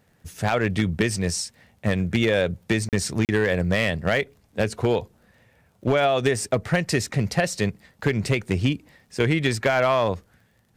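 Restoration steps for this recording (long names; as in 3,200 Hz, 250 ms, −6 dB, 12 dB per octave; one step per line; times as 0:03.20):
clipped peaks rebuilt −12 dBFS
click removal
repair the gap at 0:02.89/0:03.25, 38 ms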